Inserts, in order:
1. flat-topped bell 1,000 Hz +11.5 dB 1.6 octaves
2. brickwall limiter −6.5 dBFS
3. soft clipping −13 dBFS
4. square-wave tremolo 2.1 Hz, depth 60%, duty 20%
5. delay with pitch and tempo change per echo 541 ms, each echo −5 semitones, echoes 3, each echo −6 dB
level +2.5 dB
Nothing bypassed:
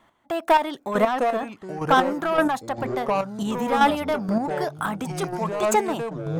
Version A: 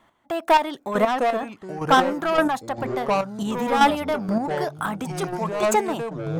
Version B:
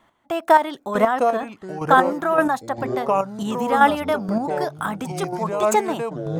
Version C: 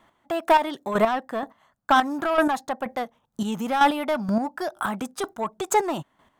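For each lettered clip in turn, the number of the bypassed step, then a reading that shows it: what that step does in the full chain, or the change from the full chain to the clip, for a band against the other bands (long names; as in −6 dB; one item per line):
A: 2, change in momentary loudness spread +1 LU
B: 3, change in crest factor +3.5 dB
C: 5, change in crest factor −2.0 dB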